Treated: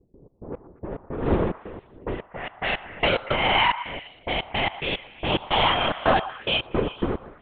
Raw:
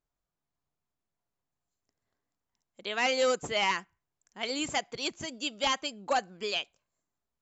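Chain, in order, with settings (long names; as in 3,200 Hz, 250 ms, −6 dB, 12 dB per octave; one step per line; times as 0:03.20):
peak hold with a rise ahead of every peak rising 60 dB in 2.06 s
wind on the microphone 310 Hz −28 dBFS
linear-phase brick-wall high-pass 160 Hz
linear-prediction vocoder at 8 kHz whisper
gate pattern ".x.x..x.xxx.x..x" 109 BPM −24 dB
in parallel at −1 dB: downward compressor, threshold −36 dBFS, peak gain reduction 18 dB
on the sum: low-pass that shuts in the quiet parts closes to 330 Hz, open at −25 dBFS
low-shelf EQ 220 Hz −7 dB
low-pass that shuts in the quiet parts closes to 730 Hz, open at −23 dBFS
on a send: echo through a band-pass that steps 118 ms, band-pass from 1,000 Hz, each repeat 0.7 octaves, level −11 dB
on the sum: level +3.5 dB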